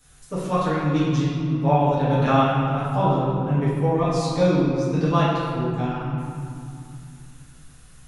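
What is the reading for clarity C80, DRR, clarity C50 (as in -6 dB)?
0.0 dB, -10.5 dB, -2.0 dB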